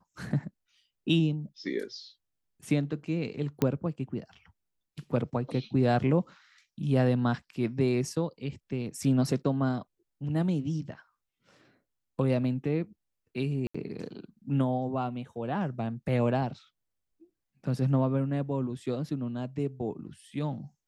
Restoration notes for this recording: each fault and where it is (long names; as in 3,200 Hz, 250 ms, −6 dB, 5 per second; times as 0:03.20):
0:03.62: click −13 dBFS
0:13.67–0:13.74: drop-out 75 ms